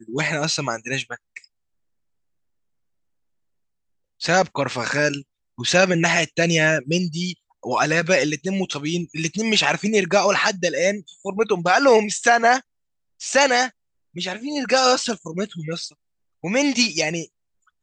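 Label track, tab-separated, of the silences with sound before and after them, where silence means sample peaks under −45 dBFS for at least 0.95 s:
1.450000	4.200000	silence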